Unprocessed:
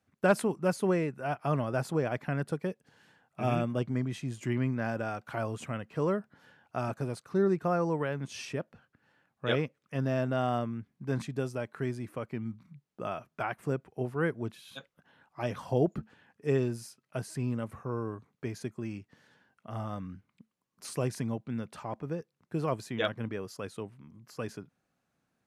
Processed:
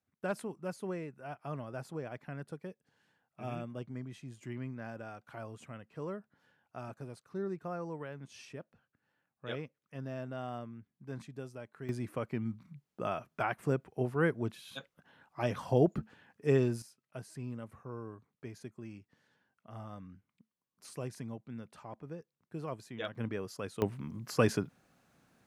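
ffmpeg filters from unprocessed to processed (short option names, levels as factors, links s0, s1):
-af "asetnsamples=n=441:p=0,asendcmd='11.89 volume volume 0.5dB;16.82 volume volume -9dB;23.15 volume volume -1dB;23.82 volume volume 10.5dB',volume=0.282"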